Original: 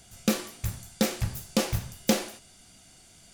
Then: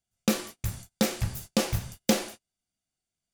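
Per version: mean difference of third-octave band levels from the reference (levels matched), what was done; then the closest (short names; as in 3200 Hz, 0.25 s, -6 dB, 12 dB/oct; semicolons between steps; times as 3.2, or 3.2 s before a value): 7.0 dB: gate -41 dBFS, range -34 dB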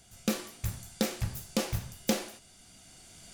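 2.0 dB: recorder AGC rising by 6.9 dB/s; gain -5 dB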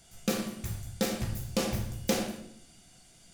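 3.5 dB: shoebox room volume 160 m³, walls mixed, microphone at 0.77 m; gain -5.5 dB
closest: second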